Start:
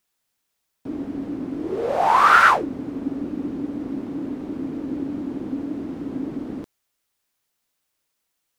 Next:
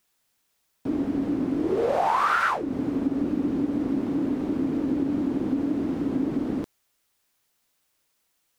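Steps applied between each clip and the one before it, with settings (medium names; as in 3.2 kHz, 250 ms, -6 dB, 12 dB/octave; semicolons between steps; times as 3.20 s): compression 8:1, threshold -24 dBFS, peak gain reduction 15 dB; trim +4 dB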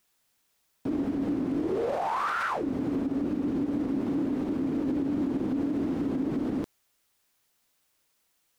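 peak limiter -21.5 dBFS, peak gain reduction 9 dB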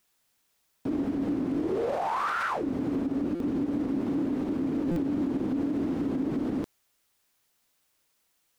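buffer glitch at 3.35/4.91 s, samples 256, times 8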